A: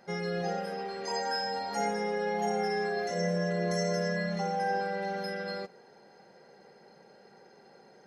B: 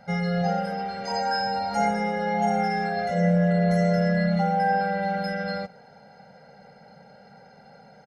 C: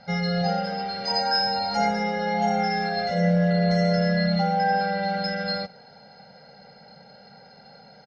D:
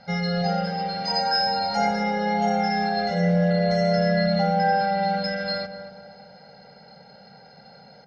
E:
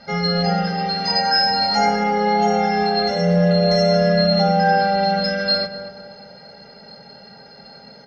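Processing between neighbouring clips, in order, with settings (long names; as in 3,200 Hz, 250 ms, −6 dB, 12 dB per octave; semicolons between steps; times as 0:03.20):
bass and treble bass +7 dB, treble −7 dB; comb filter 1.4 ms, depth 95%; level +3 dB
low-pass with resonance 4,600 Hz, resonance Q 4.2
feedback echo with a low-pass in the loop 236 ms, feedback 53%, low-pass 1,200 Hz, level −8 dB
notch comb filter 750 Hz; convolution reverb RT60 0.25 s, pre-delay 3 ms, DRR 3 dB; level +6.5 dB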